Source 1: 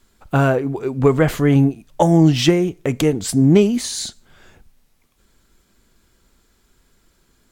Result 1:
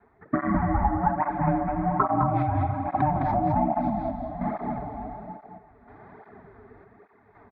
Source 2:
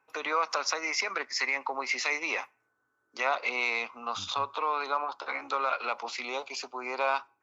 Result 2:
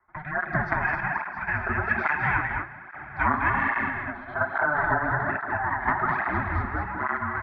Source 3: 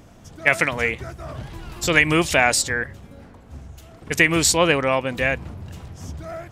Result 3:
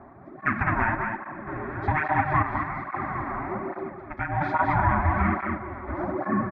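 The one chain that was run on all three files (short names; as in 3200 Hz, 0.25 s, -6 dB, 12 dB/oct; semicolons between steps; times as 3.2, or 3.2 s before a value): in parallel at -2 dB: limiter -9.5 dBFS; on the sum: AGC gain up to 8.5 dB; ring modulator 450 Hz; rotary speaker horn 0.8 Hz; bell 580 Hz +6.5 dB 1.6 oct; plate-style reverb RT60 3.8 s, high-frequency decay 0.85×, DRR 6.5 dB; chopper 0.68 Hz, depth 65%, duty 65%; steep low-pass 2600 Hz 36 dB/oct; compressor 6:1, threshold -21 dBFS; fixed phaser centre 1200 Hz, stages 4; on a send: echo 0.21 s -4.5 dB; on the sum: tape flanging out of phase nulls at 1.2 Hz, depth 6.8 ms; gain +7 dB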